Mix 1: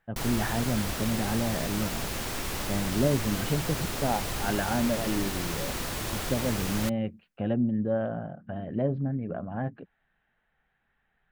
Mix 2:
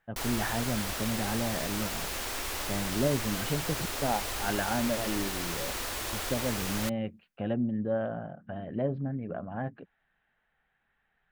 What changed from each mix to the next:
background: add peaking EQ 160 Hz -14 dB 0.85 oct; master: add bass shelf 440 Hz -4.5 dB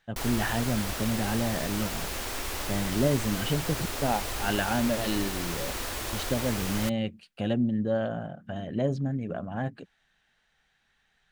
speech: remove Gaussian low-pass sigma 3.7 samples; master: add bass shelf 440 Hz +4.5 dB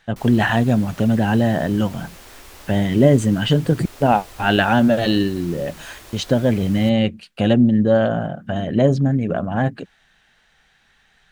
speech +12.0 dB; background -8.5 dB

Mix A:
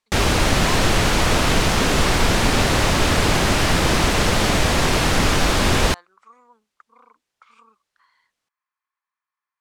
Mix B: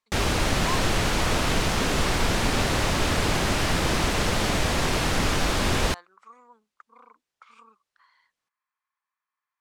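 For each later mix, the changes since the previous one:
background -6.0 dB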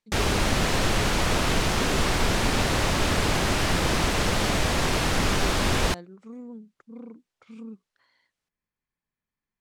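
speech: remove resonant high-pass 1.1 kHz, resonance Q 4.2

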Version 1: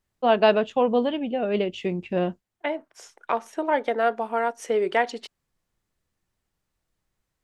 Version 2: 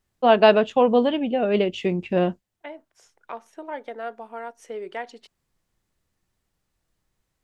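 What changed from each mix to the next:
first voice +3.5 dB; second voice -10.5 dB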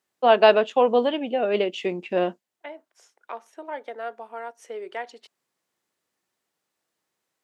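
master: add high-pass 330 Hz 12 dB/octave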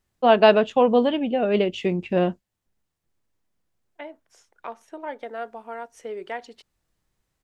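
second voice: entry +1.35 s; master: remove high-pass 330 Hz 12 dB/octave

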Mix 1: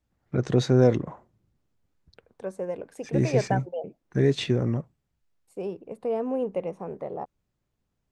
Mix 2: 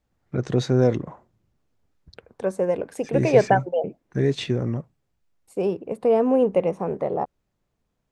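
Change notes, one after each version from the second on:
second voice +9.0 dB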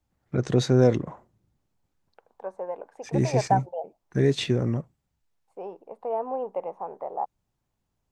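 second voice: add band-pass filter 860 Hz, Q 3.3; master: add treble shelf 5.6 kHz +5.5 dB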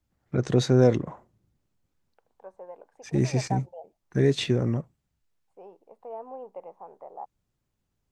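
second voice -10.0 dB

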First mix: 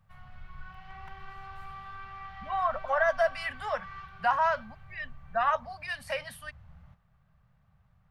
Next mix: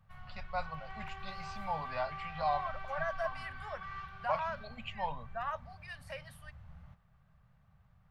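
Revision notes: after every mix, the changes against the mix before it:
first voice: unmuted; second voice -11.5 dB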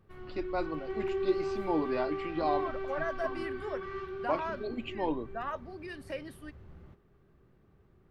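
master: remove Chebyshev band-stop 160–710 Hz, order 2

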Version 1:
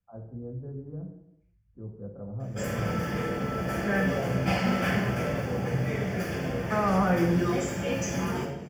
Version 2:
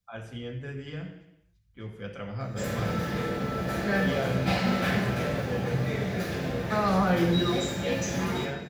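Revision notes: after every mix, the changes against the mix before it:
first voice: remove Gaussian low-pass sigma 11 samples; second voice: remove low-pass 2.7 kHz; master: remove Butterworth band-stop 3.9 kHz, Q 3.6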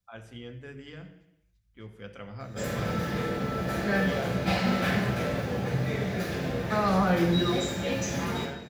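first voice: send -7.0 dB

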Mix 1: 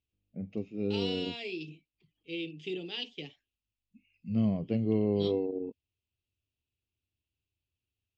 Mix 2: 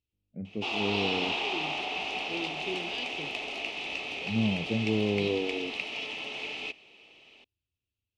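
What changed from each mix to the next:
background: unmuted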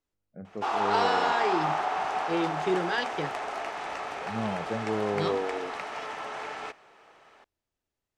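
first voice: add bass shelf 200 Hz -8.5 dB; second voice +9.5 dB; master: remove FFT filter 180 Hz 0 dB, 260 Hz +4 dB, 1.6 kHz -18 dB, 2.6 kHz +13 dB, 8 kHz -5 dB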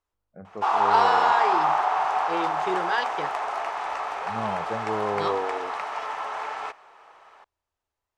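first voice: add bass shelf 200 Hz +8.5 dB; master: add graphic EQ 125/250/1000 Hz -8/-6/+9 dB

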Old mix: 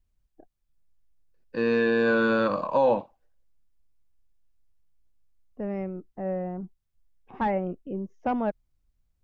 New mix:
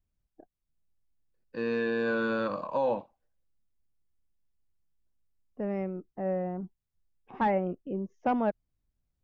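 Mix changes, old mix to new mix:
first voice -6.5 dB; second voice: add bass shelf 70 Hz -11 dB

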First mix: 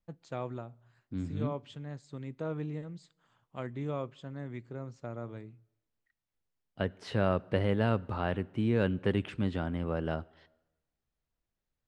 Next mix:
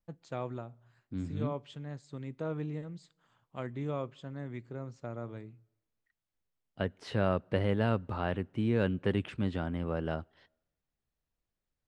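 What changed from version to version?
second voice: send -9.5 dB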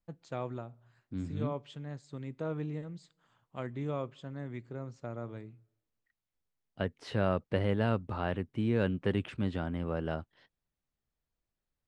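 second voice: send off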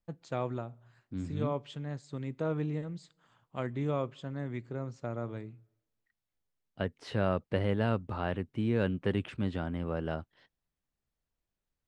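first voice +3.5 dB

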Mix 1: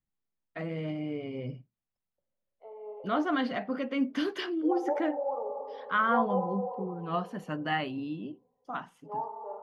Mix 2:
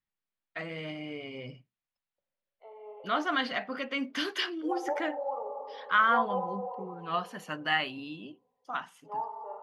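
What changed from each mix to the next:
master: add tilt shelf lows -8 dB, about 820 Hz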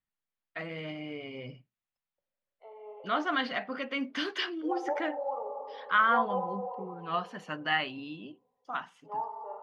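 first voice: add distance through air 79 m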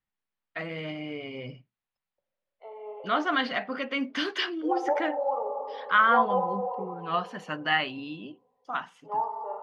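first voice +3.5 dB; second voice +6.0 dB

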